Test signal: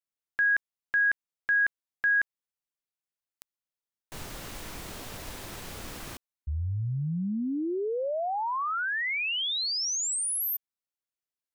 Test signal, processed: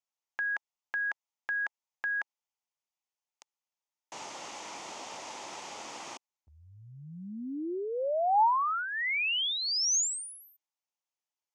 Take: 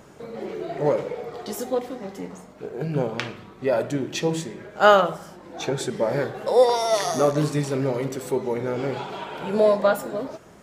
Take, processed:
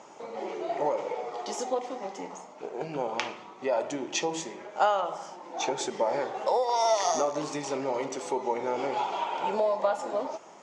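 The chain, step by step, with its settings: compression 16:1, threshold -22 dBFS; cabinet simulation 400–6900 Hz, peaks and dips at 440 Hz -4 dB, 870 Hz +8 dB, 1.6 kHz -8 dB, 4 kHz -5 dB, 6.5 kHz +5 dB; trim +1 dB

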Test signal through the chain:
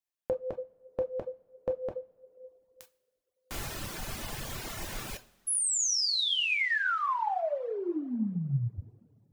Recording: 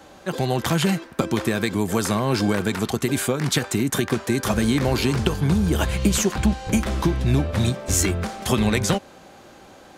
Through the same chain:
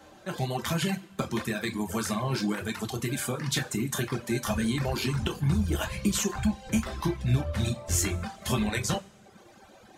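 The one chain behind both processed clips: two-slope reverb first 0.48 s, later 2.5 s, from -18 dB, DRR 1.5 dB; dynamic bell 430 Hz, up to -4 dB, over -35 dBFS, Q 1; reverb removal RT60 1 s; trim -7 dB

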